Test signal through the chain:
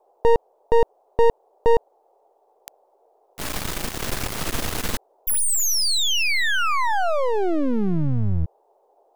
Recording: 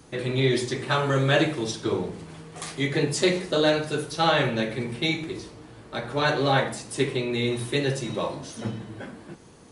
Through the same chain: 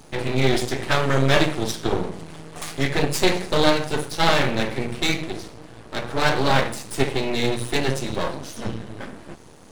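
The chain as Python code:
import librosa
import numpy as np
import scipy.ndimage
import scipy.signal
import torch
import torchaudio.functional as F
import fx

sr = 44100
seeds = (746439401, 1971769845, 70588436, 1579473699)

y = np.maximum(x, 0.0)
y = fx.dmg_noise_band(y, sr, seeds[0], low_hz=390.0, high_hz=870.0, level_db=-68.0)
y = y * librosa.db_to_amplitude(7.0)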